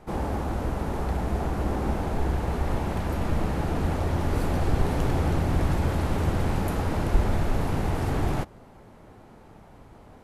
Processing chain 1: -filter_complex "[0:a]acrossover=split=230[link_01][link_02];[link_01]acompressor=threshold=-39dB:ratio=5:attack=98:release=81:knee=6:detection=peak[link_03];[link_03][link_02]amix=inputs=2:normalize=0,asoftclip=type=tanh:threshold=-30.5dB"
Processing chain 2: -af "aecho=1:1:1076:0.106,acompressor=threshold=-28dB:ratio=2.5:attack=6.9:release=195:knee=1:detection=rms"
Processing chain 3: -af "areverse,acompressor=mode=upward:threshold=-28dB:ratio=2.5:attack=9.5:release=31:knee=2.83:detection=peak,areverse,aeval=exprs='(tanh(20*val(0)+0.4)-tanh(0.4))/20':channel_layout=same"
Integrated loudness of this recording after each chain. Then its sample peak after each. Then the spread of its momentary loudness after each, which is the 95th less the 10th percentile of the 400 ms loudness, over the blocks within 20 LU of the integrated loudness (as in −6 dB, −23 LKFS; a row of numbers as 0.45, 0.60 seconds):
−35.5, −33.0, −33.0 LKFS; −30.5, −17.5, −23.0 dBFS; 16, 14, 9 LU